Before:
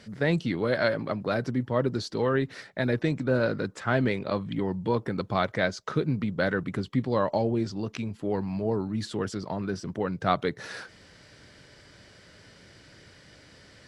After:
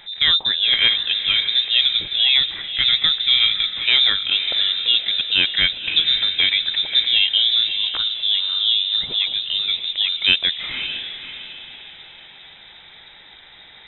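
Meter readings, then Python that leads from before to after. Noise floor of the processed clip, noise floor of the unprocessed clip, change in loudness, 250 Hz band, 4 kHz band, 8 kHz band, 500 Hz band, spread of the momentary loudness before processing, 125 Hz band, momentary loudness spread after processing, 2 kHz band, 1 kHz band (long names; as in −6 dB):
−45 dBFS, −54 dBFS, +12.5 dB, −16.5 dB, +29.5 dB, below −30 dB, −17.5 dB, 7 LU, below −10 dB, 8 LU, +10.0 dB, −7.5 dB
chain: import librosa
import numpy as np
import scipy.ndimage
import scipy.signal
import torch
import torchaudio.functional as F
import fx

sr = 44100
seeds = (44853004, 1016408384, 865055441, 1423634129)

y = fx.freq_invert(x, sr, carrier_hz=3800)
y = fx.echo_diffused(y, sr, ms=559, feedback_pct=41, wet_db=-9.0)
y = F.gain(torch.from_numpy(y), 8.0).numpy()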